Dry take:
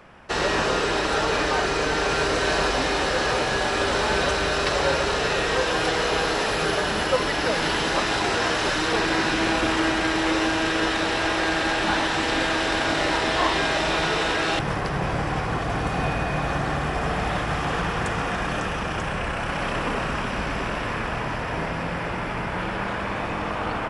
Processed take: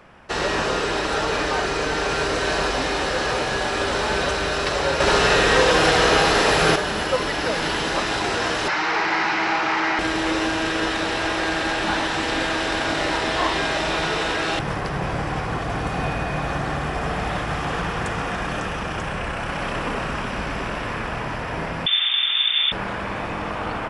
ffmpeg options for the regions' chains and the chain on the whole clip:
ffmpeg -i in.wav -filter_complex "[0:a]asettb=1/sr,asplit=3[link_01][link_02][link_03];[link_01]atrim=end=5.004[link_04];[link_02]atrim=start=5:end=6.76,asetpts=PTS-STARTPTS,afade=type=in:duration=0.004:curve=qsin,afade=type=out:start_time=1.756:duration=0.004:curve=qsin,acontrast=33,aecho=1:1:76:0.596,atrim=end_sample=77616[link_05];[link_03]atrim=start=6.756[link_06];[link_04][link_05]acrossfade=duration=0.004:curve1=hsin:curve2=qsin[link_07];[link_07][link_06]acrossfade=duration=0.004:curve1=qsin:curve2=hsin,asettb=1/sr,asplit=3[link_08][link_09][link_10];[link_08]atrim=end=8.684[link_11];[link_09]atrim=start=8.68:end=9.99,asetpts=PTS-STARTPTS,afade=type=in:duration=0.004:curve=qsin,afade=type=out:start_time=1.306:duration=0.004:curve=qsin,aeval=exprs='0.126*(abs(mod(val(0)/0.126+3,4)-2)-1)':channel_layout=same,highpass=190,equalizer=frequency=260:width_type=q:width=4:gain=-9,equalizer=frequency=530:width_type=q:width=4:gain=-6,equalizer=frequency=860:width_type=q:width=4:gain=9,equalizer=frequency=1300:width_type=q:width=4:gain=5,equalizer=frequency=2100:width_type=q:width=4:gain=8,equalizer=frequency=3500:width_type=q:width=4:gain=-5,lowpass=frequency=5600:width=0.5412,lowpass=frequency=5600:width=1.3066[link_12];[link_10]atrim=start=9.986[link_13];[link_11][link_12]acrossfade=duration=0.004:curve1=hsin:curve2=qsin[link_14];[link_14][link_13]acrossfade=duration=0.004:curve1=qsin:curve2=hsin,asettb=1/sr,asplit=3[link_15][link_16][link_17];[link_15]atrim=end=21.864[link_18];[link_16]atrim=start=21.86:end=22.72,asetpts=PTS-STARTPTS,afade=type=in:duration=0.004:curve=qsin,afade=type=out:start_time=0.856:duration=0.004:curve=qsin,equalizer=frequency=170:width=0.61:gain=13.5,lowpass=frequency=3100:width_type=q:width=0.5098,lowpass=frequency=3100:width_type=q:width=0.6013,lowpass=frequency=3100:width_type=q:width=0.9,lowpass=frequency=3100:width_type=q:width=2.563,afreqshift=-3700[link_19];[link_17]atrim=start=22.716[link_20];[link_18][link_19]acrossfade=duration=0.004:curve1=hsin:curve2=qsin[link_21];[link_21][link_20]acrossfade=duration=0.004:curve1=qsin:curve2=hsin" out.wav

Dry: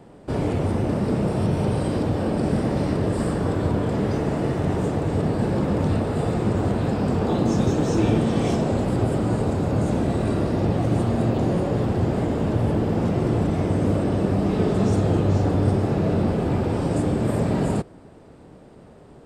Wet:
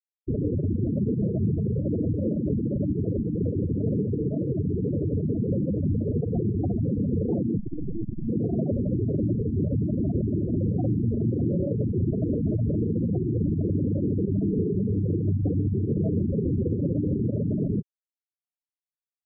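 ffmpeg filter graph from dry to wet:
ffmpeg -i in.wav -filter_complex "[0:a]asettb=1/sr,asplit=3[link_01][link_02][link_03];[link_01]atrim=end=3.194[link_04];[link_02]atrim=start=3.19:end=5.74,asetpts=PTS-STARTPTS,afade=type=in:duration=0.004:curve=qsin,afade=type=out:start_time=2.546:duration=0.004:curve=qsin,aemphasis=mode=production:type=50fm,asplit=7[link_05][link_06][link_07][link_08][link_09][link_10][link_11];[link_06]adelay=84,afreqshift=60,volume=-14dB[link_12];[link_07]adelay=168,afreqshift=120,volume=-19dB[link_13];[link_08]adelay=252,afreqshift=180,volume=-24.1dB[link_14];[link_09]adelay=336,afreqshift=240,volume=-29.1dB[link_15];[link_10]adelay=420,afreqshift=300,volume=-34.1dB[link_16];[link_11]adelay=504,afreqshift=360,volume=-39.2dB[link_17];[link_05][link_12][link_13][link_14][link_15][link_16][link_17]amix=inputs=7:normalize=0,atrim=end_sample=112455,acrusher=bits=7:mode=log:mix=0:aa=0.000001[link_18];[link_03]atrim=start=5.736[link_19];[link_04][link_18]acrossfade=duration=0.004:curve1=hsin:curve2=qsin[link_20];[link_20][link_19]acrossfade=duration=0.004:curve1=qsin:curve2=hsin,asettb=1/sr,asplit=3[link_21][link_22][link_23];[link_21]atrim=end=7.584[link_24];[link_22]atrim=start=7.58:end=8.28,asetpts=PTS-STARTPTS,afade=type=in:duration=0.004:curve=qsin,afade=type=out:start_time=0.696:duration=0.004:curve=qsin,equalizer=frequency=510:width_type=o:width=0.22:gain=-12.5,acrusher=bits=3:dc=4:mix=0:aa=0.000001[link_25];[link_23]atrim=start=8.276[link_26];[link_24][link_25]acrossfade=duration=0.004:curve1=hsin:curve2=qsin[link_27];[link_27][link_26]acrossfade=duration=0.004:curve1=qsin:curve2=hsin,asettb=1/sr,asplit=3[link_28][link_29][link_30];[link_28]atrim=end=10.524[link_31];[link_29]atrim=start=10.52:end=11.37,asetpts=PTS-STARTPTS,afade=type=in:duration=0.004:curve=qsin,afade=type=out:start_time=0.846:duration=0.004:curve=qsin,lowpass=1200,asplit=2[link_32][link_33];[link_33]adelay=50,volume=-9dB[link_34];[link_32][link_34]amix=inputs=2:normalize=0,atrim=end_sample=37485[link_35];[link_30]atrim=start=11.366[link_36];[link_31][link_35]acrossfade=duration=0.004:curve1=hsin:curve2=qsin[link_37];[link_37][link_36]acrossfade=duration=0.004:curve1=qsin:curve2=hsin,acompressor=threshold=-32dB:ratio=2,alimiter=limit=-23.5dB:level=0:latency=1:release=54,afftfilt=real='re*gte(hypot(re,im),0.1)':imag='im*gte(hypot(re,im),0.1)':win_size=1024:overlap=0.75,volume=8dB" out.wav

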